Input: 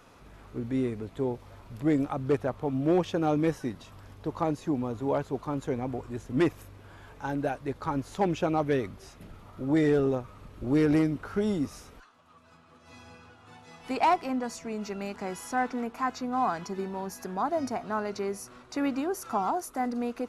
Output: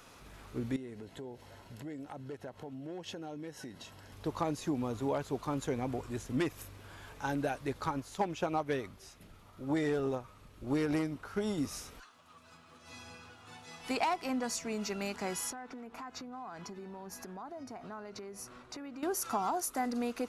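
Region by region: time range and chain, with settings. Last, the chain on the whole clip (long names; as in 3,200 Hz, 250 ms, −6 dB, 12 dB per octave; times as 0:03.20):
0:00.76–0:04.13: high-shelf EQ 9,700 Hz −5.5 dB + downward compressor 5 to 1, threshold −39 dBFS + notch comb filter 1,200 Hz
0:07.91–0:11.58: dynamic equaliser 910 Hz, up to +5 dB, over −42 dBFS, Q 1.1 + expander for the loud parts, over −32 dBFS
0:15.50–0:19.03: high-shelf EQ 2,900 Hz −10 dB + downward compressor 8 to 1, threshold −40 dBFS
whole clip: high-shelf EQ 2,200 Hz +9 dB; downward compressor, threshold −26 dBFS; level −2.5 dB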